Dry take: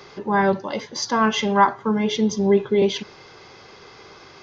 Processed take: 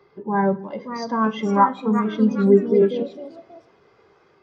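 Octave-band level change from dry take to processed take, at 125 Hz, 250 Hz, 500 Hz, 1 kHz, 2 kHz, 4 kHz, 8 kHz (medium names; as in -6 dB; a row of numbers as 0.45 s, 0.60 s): +2.0 dB, +2.0 dB, +1.5 dB, -0.5 dB, -6.5 dB, -12.0 dB, no reading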